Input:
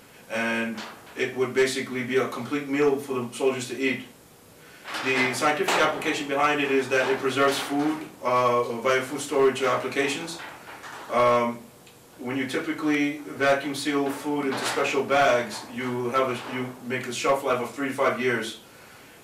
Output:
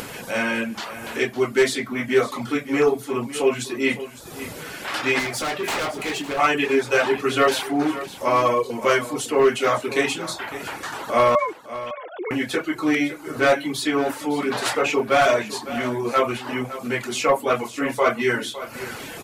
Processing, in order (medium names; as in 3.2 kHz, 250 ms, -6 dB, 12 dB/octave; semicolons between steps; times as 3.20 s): 11.35–12.31 s: formants replaced by sine waves; reverb removal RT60 0.61 s; upward compressor, threshold -28 dBFS; 5.19–6.39 s: hard clipper -27.5 dBFS, distortion -15 dB; delay 558 ms -14 dB; trim +4 dB